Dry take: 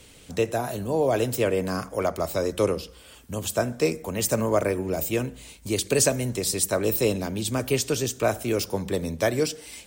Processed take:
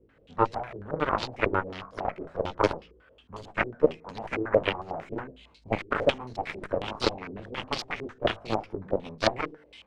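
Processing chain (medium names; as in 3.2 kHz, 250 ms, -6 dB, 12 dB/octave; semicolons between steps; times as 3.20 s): chorus 1.4 Hz, delay 18 ms, depth 2.2 ms; Chebyshev shaper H 6 -18 dB, 7 -14 dB, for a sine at -9 dBFS; step-sequenced low-pass 11 Hz 380–4500 Hz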